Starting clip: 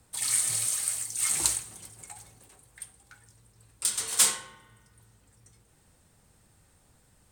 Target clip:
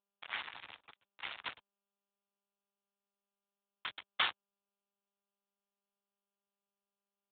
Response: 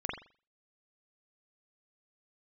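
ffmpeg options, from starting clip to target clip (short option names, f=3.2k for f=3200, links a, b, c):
-af "highpass=54,aeval=exprs='val(0)*gte(abs(val(0)),0.0944)':c=same,lowshelf=f=660:t=q:w=1.5:g=-9,volume=2.5dB" -ar 8000 -c:a libopencore_amrnb -b:a 10200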